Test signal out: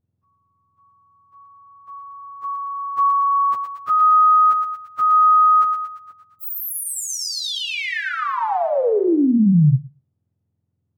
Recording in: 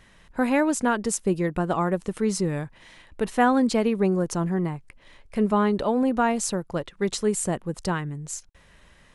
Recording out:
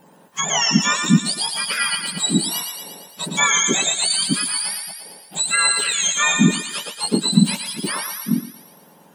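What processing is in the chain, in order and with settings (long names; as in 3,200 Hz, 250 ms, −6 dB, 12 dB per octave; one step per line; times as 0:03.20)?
frequency axis turned over on the octave scale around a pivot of 1,300 Hz
feedback echo with a high-pass in the loop 115 ms, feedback 62%, high-pass 870 Hz, level −5 dB
level +6 dB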